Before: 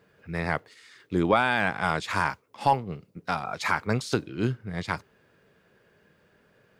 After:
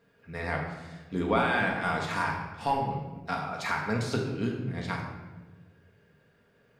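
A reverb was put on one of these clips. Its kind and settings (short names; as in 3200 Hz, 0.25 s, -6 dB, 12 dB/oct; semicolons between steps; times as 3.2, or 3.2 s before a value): shoebox room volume 780 m³, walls mixed, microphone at 1.7 m; gain -6.5 dB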